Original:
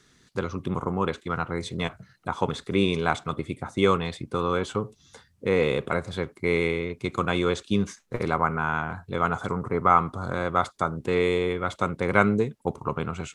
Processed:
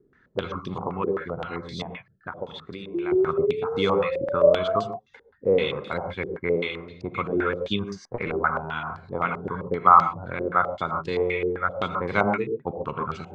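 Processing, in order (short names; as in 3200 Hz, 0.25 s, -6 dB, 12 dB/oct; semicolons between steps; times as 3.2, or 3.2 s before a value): 1.82–3.12 compressor 6:1, threshold -32 dBFS, peak gain reduction 14.5 dB; 2.94–4.84 painted sound rise 340–700 Hz -23 dBFS; reverb removal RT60 0.87 s; non-linear reverb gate 0.16 s rising, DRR 4.5 dB; stepped low-pass 7.7 Hz 400–4700 Hz; gain -3.5 dB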